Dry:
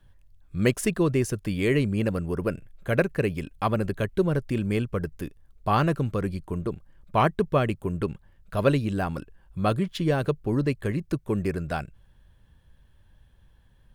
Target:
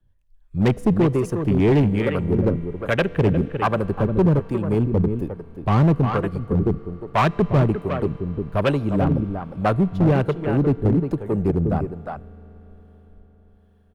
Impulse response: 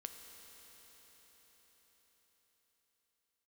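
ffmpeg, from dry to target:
-filter_complex "[0:a]afwtdn=0.0251,acrossover=split=260|2200[link_01][link_02][link_03];[link_02]asoftclip=type=tanh:threshold=-22dB[link_04];[link_01][link_04][link_03]amix=inputs=3:normalize=0,asplit=2[link_05][link_06];[link_06]adelay=355.7,volume=-8dB,highshelf=frequency=4000:gain=-8[link_07];[link_05][link_07]amix=inputs=2:normalize=0,acrossover=split=520[link_08][link_09];[link_08]aeval=exprs='val(0)*(1-0.7/2+0.7/2*cos(2*PI*1.2*n/s))':channel_layout=same[link_10];[link_09]aeval=exprs='val(0)*(1-0.7/2-0.7/2*cos(2*PI*1.2*n/s))':channel_layout=same[link_11];[link_10][link_11]amix=inputs=2:normalize=0,volume=23dB,asoftclip=hard,volume=-23dB,asplit=2[link_12][link_13];[1:a]atrim=start_sample=2205,highshelf=frequency=8400:gain=-10[link_14];[link_13][link_14]afir=irnorm=-1:irlink=0,volume=-6.5dB[link_15];[link_12][link_15]amix=inputs=2:normalize=0,volume=9dB"

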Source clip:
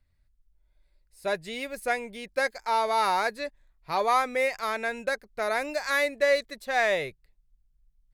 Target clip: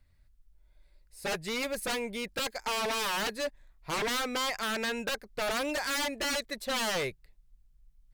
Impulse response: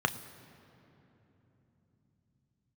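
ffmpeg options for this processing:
-filter_complex "[0:a]asplit=2[link_01][link_02];[link_02]acompressor=threshold=-32dB:ratio=6,volume=-3dB[link_03];[link_01][link_03]amix=inputs=2:normalize=0,aeval=exprs='0.0501*(abs(mod(val(0)/0.0501+3,4)-2)-1)':channel_layout=same"

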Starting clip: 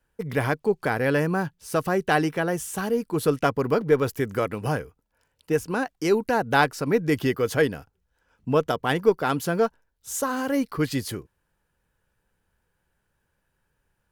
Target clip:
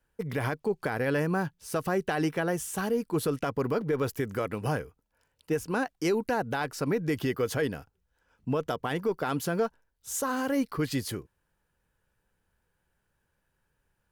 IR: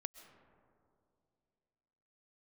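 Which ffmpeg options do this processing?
-af "alimiter=limit=-16.5dB:level=0:latency=1:release=58,volume=-2.5dB"

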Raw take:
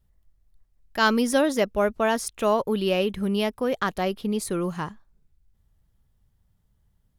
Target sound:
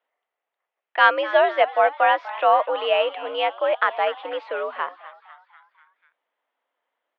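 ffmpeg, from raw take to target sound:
ffmpeg -i in.wav -filter_complex "[0:a]highpass=frequency=450:width_type=q:width=0.5412,highpass=frequency=450:width_type=q:width=1.307,lowpass=frequency=3000:width_type=q:width=0.5176,lowpass=frequency=3000:width_type=q:width=0.7071,lowpass=frequency=3000:width_type=q:width=1.932,afreqshift=76,asplit=6[link_01][link_02][link_03][link_04][link_05][link_06];[link_02]adelay=247,afreqshift=100,volume=-16.5dB[link_07];[link_03]adelay=494,afreqshift=200,volume=-21.4dB[link_08];[link_04]adelay=741,afreqshift=300,volume=-26.3dB[link_09];[link_05]adelay=988,afreqshift=400,volume=-31.1dB[link_10];[link_06]adelay=1235,afreqshift=500,volume=-36dB[link_11];[link_01][link_07][link_08][link_09][link_10][link_11]amix=inputs=6:normalize=0,volume=6dB" out.wav

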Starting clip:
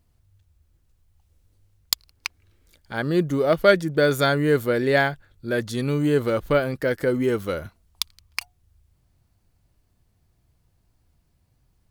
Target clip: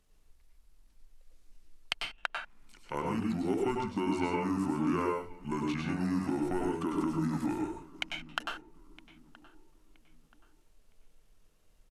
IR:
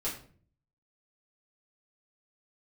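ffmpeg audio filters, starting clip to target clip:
-filter_complex "[0:a]acrossover=split=240|5400[link_01][link_02][link_03];[link_01]acompressor=threshold=-42dB:ratio=4[link_04];[link_02]acompressor=threshold=-32dB:ratio=4[link_05];[link_03]acompressor=threshold=-55dB:ratio=4[link_06];[link_04][link_05][link_06]amix=inputs=3:normalize=0,equalizer=frequency=100:width_type=o:width=1.9:gain=-14,asplit=2[link_07][link_08];[link_08]adelay=967,lowpass=frequency=4300:poles=1,volume=-20.5dB,asplit=2[link_09][link_10];[link_10]adelay=967,lowpass=frequency=4300:poles=1,volume=0.35,asplit=2[link_11][link_12];[link_12]adelay=967,lowpass=frequency=4300:poles=1,volume=0.35[link_13];[link_07][link_09][link_11][link_13]amix=inputs=4:normalize=0,asetrate=27781,aresample=44100,atempo=1.5874,asplit=2[link_14][link_15];[1:a]atrim=start_sample=2205,atrim=end_sample=4410,adelay=94[link_16];[link_15][link_16]afir=irnorm=-1:irlink=0,volume=-4.5dB[link_17];[link_14][link_17]amix=inputs=2:normalize=0"

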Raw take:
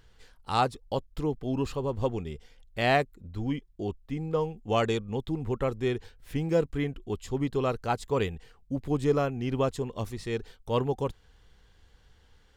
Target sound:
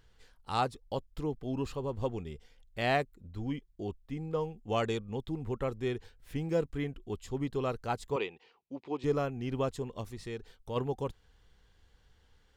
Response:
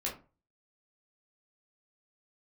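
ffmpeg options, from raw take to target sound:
-filter_complex "[0:a]asettb=1/sr,asplit=3[link_01][link_02][link_03];[link_01]atrim=end=8.164[link_04];[link_02]atrim=start=8.16:end=9.04,asetpts=PTS-STARTPTS,afade=type=in:duration=0.004:curve=qsin,afade=type=out:start_time=0.876:duration=0.004:curve=qsin,highpass=350,equalizer=frequency=360:width_type=q:width=4:gain=4,equalizer=frequency=620:width_type=q:width=4:gain=-3,equalizer=frequency=920:width_type=q:width=4:gain=7,equalizer=frequency=1600:width_type=q:width=4:gain=-6,equalizer=frequency=2500:width_type=q:width=4:gain=6,lowpass=frequency=5200:width=0.5412,lowpass=frequency=5200:width=1.3066[link_05];[link_03]atrim=start=9.036[link_06];[link_04][link_05]acrossfade=duration=0.004:curve1=hsin:curve2=qsin[link_07];[link_07][link_06]acrossfade=duration=0.004:curve1=qsin:curve2=hsin,asplit=3[link_08][link_09][link_10];[link_08]afade=type=out:start_time=10:duration=0.02[link_11];[link_09]acompressor=threshold=-33dB:ratio=2,afade=type=in:start_time=10:duration=0.02,afade=type=out:start_time=10.75:duration=0.02[link_12];[link_10]afade=type=in:start_time=10.75:duration=0.02[link_13];[link_11][link_12][link_13]amix=inputs=3:normalize=0,volume=-5dB"

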